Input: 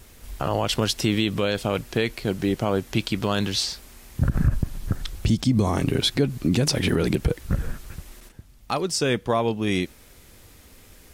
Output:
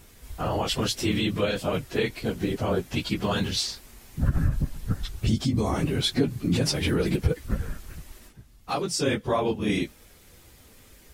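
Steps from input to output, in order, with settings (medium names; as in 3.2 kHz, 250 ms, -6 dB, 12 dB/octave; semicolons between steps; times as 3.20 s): phase randomisation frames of 50 ms; trim -2.5 dB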